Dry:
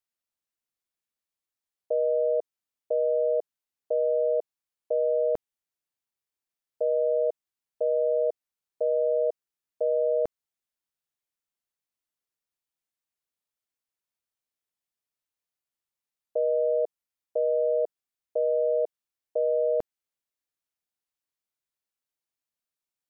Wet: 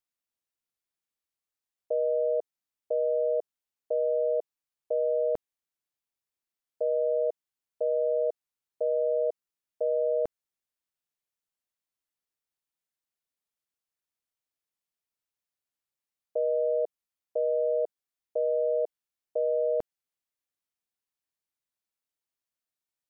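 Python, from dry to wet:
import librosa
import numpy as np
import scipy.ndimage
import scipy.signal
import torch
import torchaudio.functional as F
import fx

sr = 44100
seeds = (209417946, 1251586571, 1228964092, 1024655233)

y = F.gain(torch.from_numpy(x), -2.0).numpy()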